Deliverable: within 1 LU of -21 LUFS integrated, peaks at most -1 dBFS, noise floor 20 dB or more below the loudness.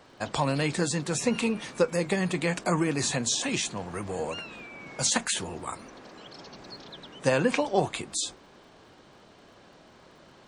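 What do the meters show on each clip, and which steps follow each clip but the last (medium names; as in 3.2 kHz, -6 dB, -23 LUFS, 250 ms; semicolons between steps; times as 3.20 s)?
tick rate 38 per s; loudness -28.0 LUFS; peak level -8.5 dBFS; loudness target -21.0 LUFS
-> de-click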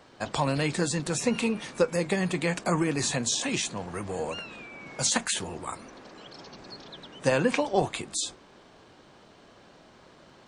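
tick rate 0.096 per s; loudness -28.0 LUFS; peak level -8.5 dBFS; loudness target -21.0 LUFS
-> trim +7 dB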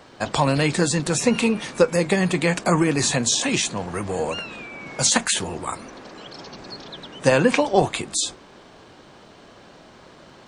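loudness -21.0 LUFS; peak level -1.5 dBFS; noise floor -48 dBFS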